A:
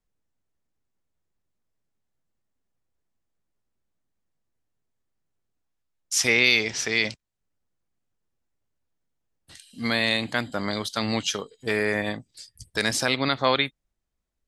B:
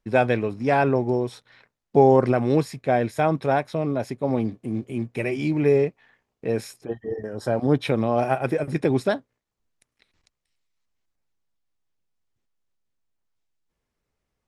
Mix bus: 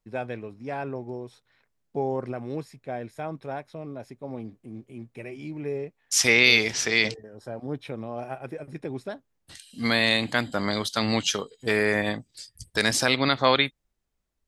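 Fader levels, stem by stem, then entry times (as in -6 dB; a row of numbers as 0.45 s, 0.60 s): +1.5 dB, -12.5 dB; 0.00 s, 0.00 s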